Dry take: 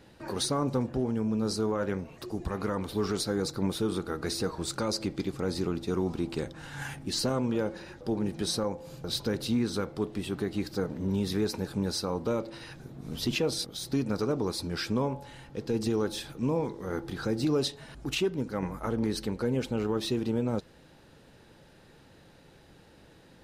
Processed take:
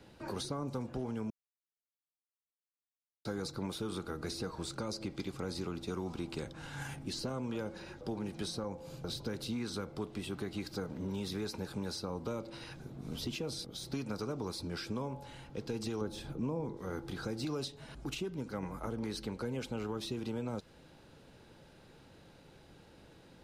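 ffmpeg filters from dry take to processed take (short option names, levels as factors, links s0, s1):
-filter_complex "[0:a]asettb=1/sr,asplit=3[s0][s1][s2];[s0]atrim=end=16.014[s3];[s1]atrim=start=16.01:end=16.77,asetpts=PTS-STARTPTS,afade=t=in:d=0.004:c=qsin,afade=t=out:st=0.756:d=0.004:c=qsin,tiltshelf=f=940:g=8[s4];[s2]atrim=start=16.766[s5];[s3][s4]acrossfade=d=0.004:c1=hsin:c2=qsin[s6];[s6][s5]acrossfade=d=0.004:c1=qsin:c2=hsin,asplit=3[s7][s8][s9];[s7]atrim=end=1.3,asetpts=PTS-STARTPTS,afade=t=out:st=1.296:d=0.004:c=hsin[s10];[s8]atrim=start=1.3:end=3.25,asetpts=PTS-STARTPTS,volume=0[s11];[s9]atrim=start=3.25,asetpts=PTS-STARTPTS,afade=t=in:d=0.004:c=hsin[s12];[s10][s11][s12]concat=n=3:v=0:a=1,highshelf=f=11000:g=-4.5,bandreject=f=1800:w=12,acrossover=split=230|670|5400[s13][s14][s15][s16];[s13]acompressor=threshold=0.0112:ratio=4[s17];[s14]acompressor=threshold=0.01:ratio=4[s18];[s15]acompressor=threshold=0.00794:ratio=4[s19];[s16]acompressor=threshold=0.00447:ratio=4[s20];[s17][s18][s19][s20]amix=inputs=4:normalize=0,volume=0.794"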